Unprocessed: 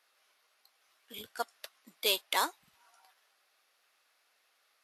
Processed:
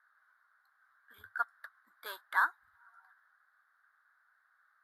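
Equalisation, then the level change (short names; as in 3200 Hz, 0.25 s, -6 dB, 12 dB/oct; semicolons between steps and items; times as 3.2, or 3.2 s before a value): EQ curve 100 Hz 0 dB, 150 Hz -29 dB, 290 Hz -17 dB, 500 Hz -20 dB, 1600 Hz +12 dB, 2600 Hz -29 dB, 3800 Hz -16 dB, 6100 Hz -27 dB, 14000 Hz -13 dB; 0.0 dB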